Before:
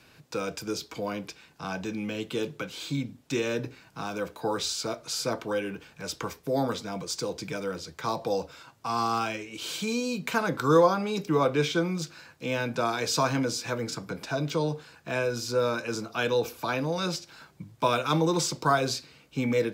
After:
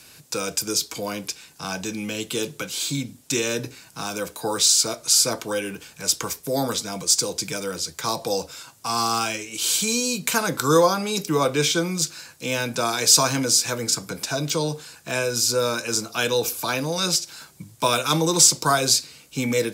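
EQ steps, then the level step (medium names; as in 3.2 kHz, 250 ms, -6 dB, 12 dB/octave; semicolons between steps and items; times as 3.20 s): treble shelf 5.1 kHz +8 dB; peaking EQ 9.3 kHz +11.5 dB 1.8 oct; +2.5 dB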